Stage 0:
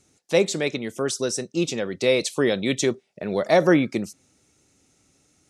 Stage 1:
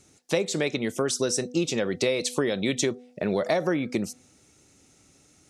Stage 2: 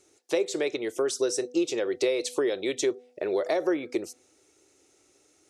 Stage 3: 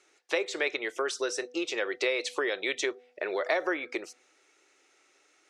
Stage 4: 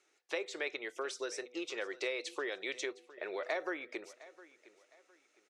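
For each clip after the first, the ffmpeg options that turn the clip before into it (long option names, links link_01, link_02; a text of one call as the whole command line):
ffmpeg -i in.wav -af "bandreject=frequency=247.3:width_type=h:width=4,bandreject=frequency=494.6:width_type=h:width=4,bandreject=frequency=741.9:width_type=h:width=4,acompressor=threshold=-25dB:ratio=12,volume=4dB" out.wav
ffmpeg -i in.wav -af "lowshelf=frequency=270:width_type=q:width=3:gain=-9.5,volume=-4.5dB" out.wav
ffmpeg -i in.wav -af "bandpass=frequency=1800:width_type=q:width=1.1:csg=0,volume=7.5dB" out.wav
ffmpeg -i in.wav -af "aecho=1:1:710|1420|2130:0.112|0.0359|0.0115,volume=-8.5dB" out.wav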